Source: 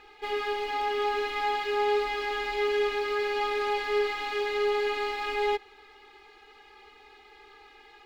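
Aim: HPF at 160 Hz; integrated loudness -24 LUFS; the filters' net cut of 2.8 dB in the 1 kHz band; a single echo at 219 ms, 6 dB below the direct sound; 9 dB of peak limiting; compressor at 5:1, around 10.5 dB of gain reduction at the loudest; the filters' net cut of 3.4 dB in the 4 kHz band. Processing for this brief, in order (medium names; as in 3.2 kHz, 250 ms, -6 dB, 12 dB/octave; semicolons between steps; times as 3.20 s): high-pass 160 Hz; peaking EQ 1 kHz -3.5 dB; peaking EQ 4 kHz -4.5 dB; compression 5:1, threshold -36 dBFS; peak limiter -37.5 dBFS; delay 219 ms -6 dB; trim +20.5 dB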